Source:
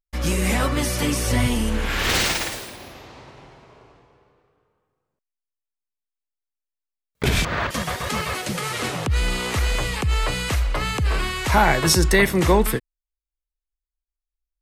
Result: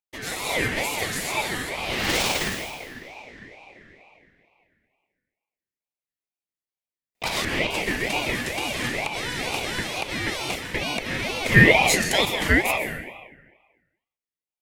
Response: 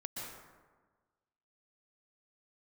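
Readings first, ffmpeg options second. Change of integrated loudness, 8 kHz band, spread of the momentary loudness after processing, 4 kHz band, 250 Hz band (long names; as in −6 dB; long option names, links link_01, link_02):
−1.5 dB, −3.0 dB, 14 LU, −0.5 dB, −3.5 dB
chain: -filter_complex "[0:a]highpass=frequency=770:width_type=q:width=3.6,asplit=2[link_01][link_02];[1:a]atrim=start_sample=2205[link_03];[link_02][link_03]afir=irnorm=-1:irlink=0,volume=0.5dB[link_04];[link_01][link_04]amix=inputs=2:normalize=0,aeval=exprs='val(0)*sin(2*PI*1300*n/s+1300*0.25/2.2*sin(2*PI*2.2*n/s))':channel_layout=same,volume=-5.5dB"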